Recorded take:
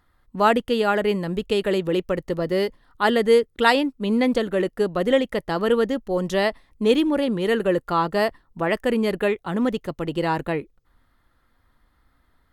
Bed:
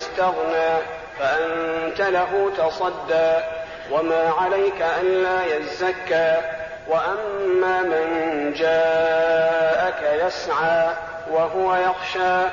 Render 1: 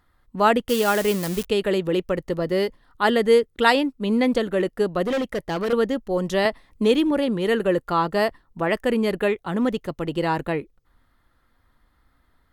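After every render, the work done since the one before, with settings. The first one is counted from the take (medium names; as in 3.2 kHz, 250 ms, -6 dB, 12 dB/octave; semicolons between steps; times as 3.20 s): 0.69–1.46 s: zero-crossing glitches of -17.5 dBFS; 5.06–5.73 s: hard clipper -20.5 dBFS; 6.45–7.11 s: three bands compressed up and down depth 40%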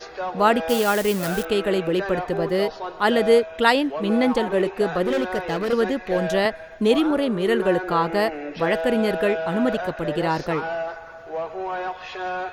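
add bed -9 dB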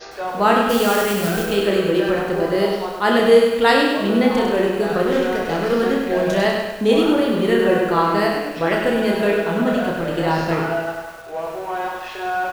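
reverse bouncing-ball echo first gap 30 ms, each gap 1.1×, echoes 5; bit-crushed delay 100 ms, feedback 55%, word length 7-bit, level -4.5 dB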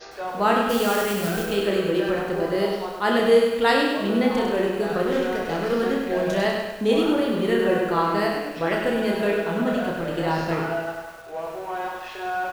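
trim -4.5 dB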